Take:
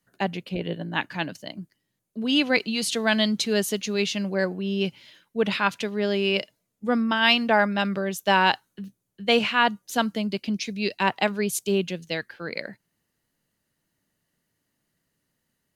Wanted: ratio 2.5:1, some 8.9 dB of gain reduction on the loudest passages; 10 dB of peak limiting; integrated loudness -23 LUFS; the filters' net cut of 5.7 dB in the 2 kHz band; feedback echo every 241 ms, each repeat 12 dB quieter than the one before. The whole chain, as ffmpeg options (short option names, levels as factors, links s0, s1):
-af "equalizer=f=2000:t=o:g=-8,acompressor=threshold=0.0316:ratio=2.5,alimiter=level_in=1.12:limit=0.0631:level=0:latency=1,volume=0.891,aecho=1:1:241|482|723:0.251|0.0628|0.0157,volume=4.22"